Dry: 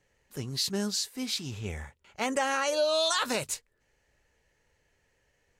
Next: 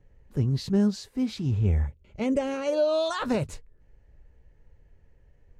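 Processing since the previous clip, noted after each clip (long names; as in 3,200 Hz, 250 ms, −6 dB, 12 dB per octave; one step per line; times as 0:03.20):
gain on a spectral selection 0:01.87–0:02.66, 660–2,000 Hz −9 dB
spectral tilt −4.5 dB per octave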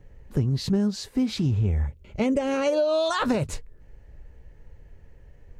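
downward compressor 6 to 1, threshold −29 dBFS, peak gain reduction 10.5 dB
level +8.5 dB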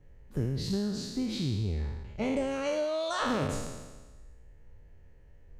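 peak hold with a decay on every bin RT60 1.29 s
level −9 dB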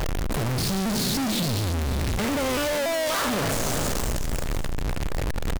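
sign of each sample alone
single-tap delay 557 ms −13.5 dB
pitch modulation by a square or saw wave saw down 3.5 Hz, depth 160 cents
level +8.5 dB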